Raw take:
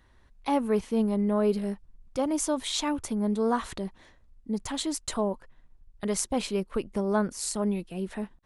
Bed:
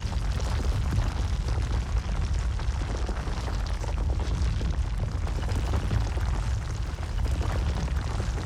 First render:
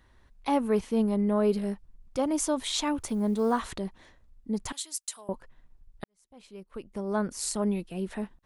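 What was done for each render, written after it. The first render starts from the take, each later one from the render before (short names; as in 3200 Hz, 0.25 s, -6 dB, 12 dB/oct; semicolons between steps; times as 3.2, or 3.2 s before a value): 2.97–3.6 block floating point 7-bit; 4.72–5.29 differentiator; 6.04–7.38 fade in quadratic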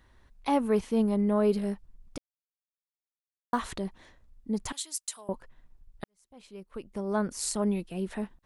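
2.18–3.53 mute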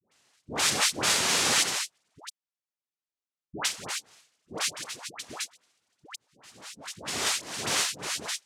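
noise vocoder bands 1; dispersion highs, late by 0.113 s, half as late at 870 Hz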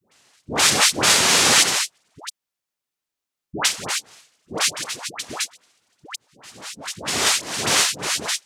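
gain +9 dB; limiter -3 dBFS, peak gain reduction 1 dB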